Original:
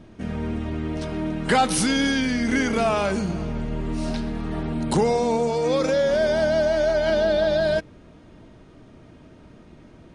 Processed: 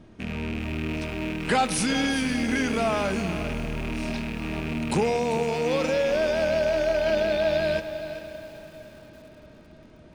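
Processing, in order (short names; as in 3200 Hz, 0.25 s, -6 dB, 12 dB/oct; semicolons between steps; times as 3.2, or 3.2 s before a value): rattling part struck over -35 dBFS, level -21 dBFS; diffused feedback echo 0.532 s, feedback 54%, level -16 dB; lo-fi delay 0.396 s, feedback 35%, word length 7-bit, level -12 dB; gain -3.5 dB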